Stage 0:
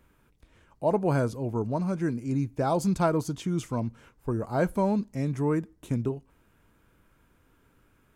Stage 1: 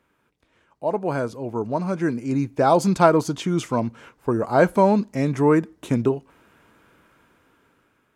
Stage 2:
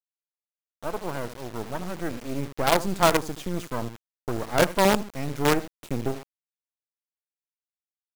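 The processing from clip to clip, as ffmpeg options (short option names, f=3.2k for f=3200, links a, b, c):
-af "highpass=f=330:p=1,highshelf=f=7.8k:g=-10.5,dynaudnorm=f=700:g=5:m=12.5dB,volume=1dB"
-af "aecho=1:1:78:0.224,acrusher=bits=3:dc=4:mix=0:aa=0.000001,volume=-4.5dB"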